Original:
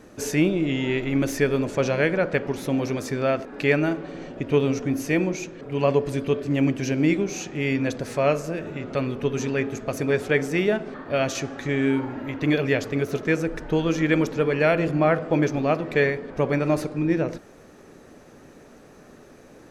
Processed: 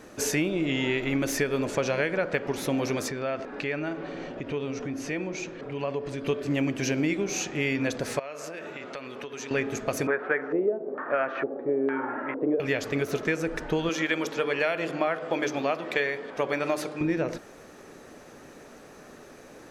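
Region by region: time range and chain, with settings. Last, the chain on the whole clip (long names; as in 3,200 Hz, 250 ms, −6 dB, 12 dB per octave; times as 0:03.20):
0:03.08–0:06.25: downward compressor 2.5 to 1, threshold −31 dBFS + high-frequency loss of the air 71 metres
0:08.19–0:09.51: high-pass filter 590 Hz 6 dB per octave + high-shelf EQ 9,600 Hz −6 dB + downward compressor 16 to 1, threshold −34 dBFS
0:10.07–0:12.60: auto-filter low-pass square 1.1 Hz 480–1,500 Hz + band-pass filter 290–3,000 Hz
0:13.89–0:17.01: high-pass filter 360 Hz 6 dB per octave + parametric band 3,300 Hz +4.5 dB 0.27 octaves + mains-hum notches 50/100/150/200/250/300/350/400/450/500 Hz
whole clip: low-shelf EQ 350 Hz −7.5 dB; downward compressor, threshold −26 dBFS; level +3.5 dB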